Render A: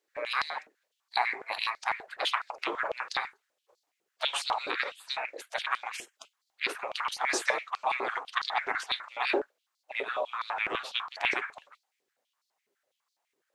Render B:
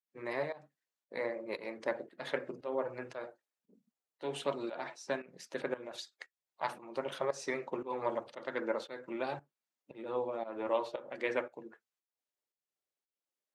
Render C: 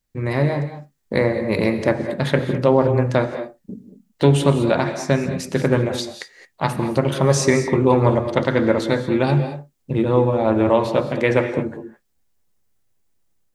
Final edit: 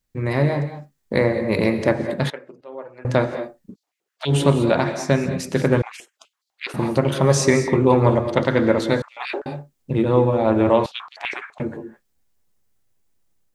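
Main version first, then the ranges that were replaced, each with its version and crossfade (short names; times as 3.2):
C
2.3–3.05 from B
3.71–4.3 from A, crossfade 0.10 s
5.82–6.74 from A
9.02–9.46 from A
10.86–11.6 from A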